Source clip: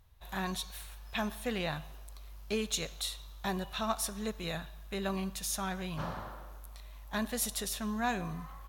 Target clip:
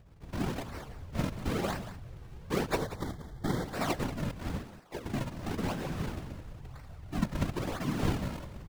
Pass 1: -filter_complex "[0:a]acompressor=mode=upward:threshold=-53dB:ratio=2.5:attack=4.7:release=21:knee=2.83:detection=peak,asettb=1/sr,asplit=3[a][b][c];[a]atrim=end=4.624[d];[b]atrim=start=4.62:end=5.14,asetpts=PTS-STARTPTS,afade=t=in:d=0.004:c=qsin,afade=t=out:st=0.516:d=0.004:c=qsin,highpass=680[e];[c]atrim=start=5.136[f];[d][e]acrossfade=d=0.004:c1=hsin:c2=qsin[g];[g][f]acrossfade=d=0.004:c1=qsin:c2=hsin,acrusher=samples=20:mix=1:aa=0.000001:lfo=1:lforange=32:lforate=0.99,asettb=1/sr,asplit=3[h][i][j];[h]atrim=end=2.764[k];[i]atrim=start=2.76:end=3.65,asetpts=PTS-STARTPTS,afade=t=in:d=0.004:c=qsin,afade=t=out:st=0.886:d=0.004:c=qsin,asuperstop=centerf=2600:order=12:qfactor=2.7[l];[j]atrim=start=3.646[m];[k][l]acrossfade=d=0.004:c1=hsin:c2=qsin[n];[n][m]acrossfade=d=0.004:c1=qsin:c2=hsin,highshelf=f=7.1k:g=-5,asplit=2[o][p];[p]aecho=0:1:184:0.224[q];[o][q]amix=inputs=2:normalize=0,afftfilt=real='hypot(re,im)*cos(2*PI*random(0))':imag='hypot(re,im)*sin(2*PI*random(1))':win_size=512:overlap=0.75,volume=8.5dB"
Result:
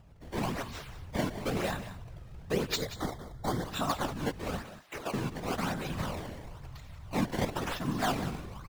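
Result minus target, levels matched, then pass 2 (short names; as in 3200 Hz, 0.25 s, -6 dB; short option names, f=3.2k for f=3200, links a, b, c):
decimation with a swept rate: distortion -8 dB
-filter_complex "[0:a]acompressor=mode=upward:threshold=-53dB:ratio=2.5:attack=4.7:release=21:knee=2.83:detection=peak,asettb=1/sr,asplit=3[a][b][c];[a]atrim=end=4.624[d];[b]atrim=start=4.62:end=5.14,asetpts=PTS-STARTPTS,afade=t=in:d=0.004:c=qsin,afade=t=out:st=0.516:d=0.004:c=qsin,highpass=680[e];[c]atrim=start=5.136[f];[d][e]acrossfade=d=0.004:c1=hsin:c2=qsin[g];[g][f]acrossfade=d=0.004:c1=qsin:c2=hsin,acrusher=samples=65:mix=1:aa=0.000001:lfo=1:lforange=104:lforate=0.99,asettb=1/sr,asplit=3[h][i][j];[h]atrim=end=2.764[k];[i]atrim=start=2.76:end=3.65,asetpts=PTS-STARTPTS,afade=t=in:d=0.004:c=qsin,afade=t=out:st=0.886:d=0.004:c=qsin,asuperstop=centerf=2600:order=12:qfactor=2.7[l];[j]atrim=start=3.646[m];[k][l]acrossfade=d=0.004:c1=hsin:c2=qsin[n];[n][m]acrossfade=d=0.004:c1=qsin:c2=hsin,highshelf=f=7.1k:g=-5,asplit=2[o][p];[p]aecho=0:1:184:0.224[q];[o][q]amix=inputs=2:normalize=0,afftfilt=real='hypot(re,im)*cos(2*PI*random(0))':imag='hypot(re,im)*sin(2*PI*random(1))':win_size=512:overlap=0.75,volume=8.5dB"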